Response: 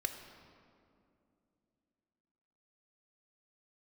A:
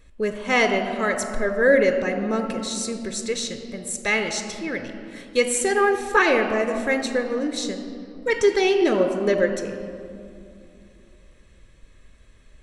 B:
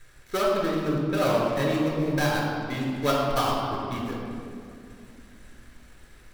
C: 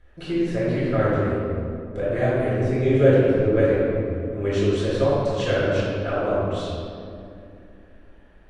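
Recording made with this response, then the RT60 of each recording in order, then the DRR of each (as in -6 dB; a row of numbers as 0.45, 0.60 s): A; 2.6, 2.6, 2.6 s; 6.0, -4.0, -10.0 dB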